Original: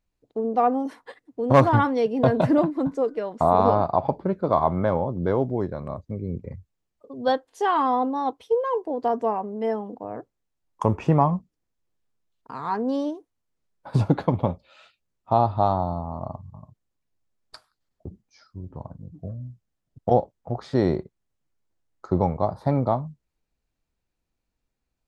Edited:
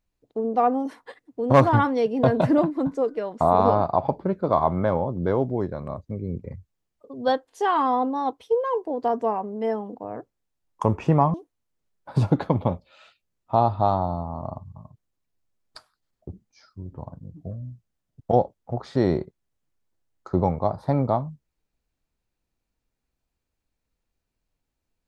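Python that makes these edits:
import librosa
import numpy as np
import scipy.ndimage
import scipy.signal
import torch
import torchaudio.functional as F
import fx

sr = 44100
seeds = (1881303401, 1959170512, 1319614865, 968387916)

y = fx.edit(x, sr, fx.cut(start_s=11.34, length_s=1.78), tone=tone)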